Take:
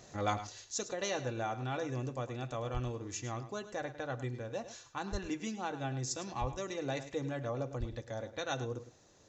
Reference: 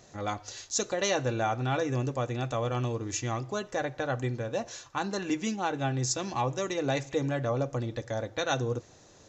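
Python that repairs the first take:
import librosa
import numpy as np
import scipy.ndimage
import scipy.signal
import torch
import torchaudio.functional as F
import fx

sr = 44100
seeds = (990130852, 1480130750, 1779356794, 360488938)

y = fx.fix_deplosive(x, sr, at_s=(2.73, 5.11, 6.4, 7.79))
y = fx.fix_echo_inverse(y, sr, delay_ms=105, level_db=-13.0)
y = fx.gain(y, sr, db=fx.steps((0.0, 0.0), (0.47, 8.0)))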